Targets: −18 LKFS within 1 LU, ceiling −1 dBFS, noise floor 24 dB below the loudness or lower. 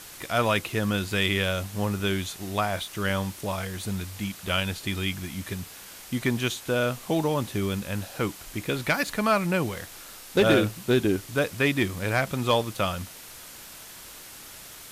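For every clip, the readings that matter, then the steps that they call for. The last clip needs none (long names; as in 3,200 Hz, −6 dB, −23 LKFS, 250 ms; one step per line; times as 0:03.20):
background noise floor −45 dBFS; target noise floor −51 dBFS; integrated loudness −27.0 LKFS; sample peak −12.0 dBFS; target loudness −18.0 LKFS
→ broadband denoise 6 dB, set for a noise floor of −45 dBFS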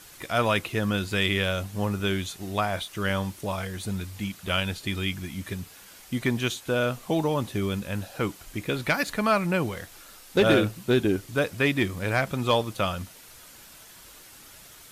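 background noise floor −49 dBFS; target noise floor −51 dBFS
→ broadband denoise 6 dB, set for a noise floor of −49 dBFS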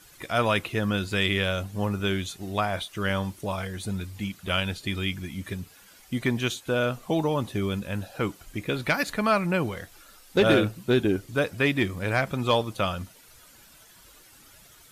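background noise floor −53 dBFS; integrated loudness −27.0 LKFS; sample peak −12.0 dBFS; target loudness −18.0 LKFS
→ level +9 dB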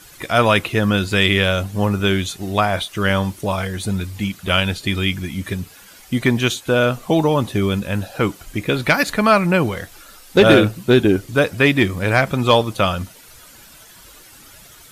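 integrated loudness −18.0 LKFS; sample peak −3.0 dBFS; background noise floor −44 dBFS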